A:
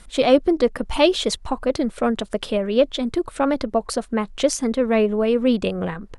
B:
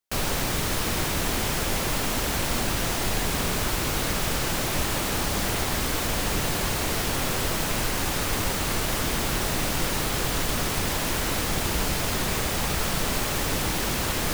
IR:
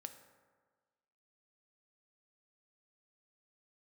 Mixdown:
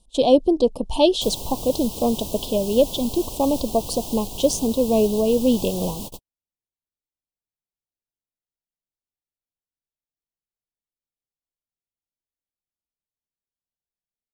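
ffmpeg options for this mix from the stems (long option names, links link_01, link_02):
-filter_complex "[0:a]volume=0dB,asplit=2[link_01][link_02];[1:a]alimiter=limit=-17dB:level=0:latency=1:release=352,highshelf=frequency=9800:gain=5.5,adelay=1100,volume=-5.5dB[link_03];[link_02]apad=whole_len=680567[link_04];[link_03][link_04]sidechaingate=range=-55dB:threshold=-36dB:ratio=16:detection=peak[link_05];[link_01][link_05]amix=inputs=2:normalize=0,agate=range=-14dB:threshold=-34dB:ratio=16:detection=peak,asuperstop=centerf=1700:order=8:qfactor=0.87"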